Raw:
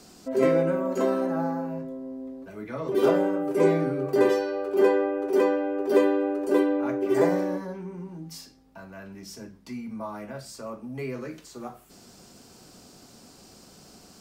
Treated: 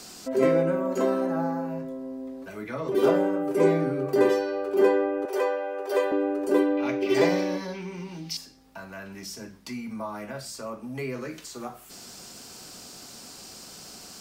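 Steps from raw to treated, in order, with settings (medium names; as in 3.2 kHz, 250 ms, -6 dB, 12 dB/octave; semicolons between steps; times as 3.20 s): 5.25–6.12 s: high-pass 470 Hz 24 dB/octave; 6.77–8.37 s: high-order bell 3.5 kHz +12.5 dB; tape noise reduction on one side only encoder only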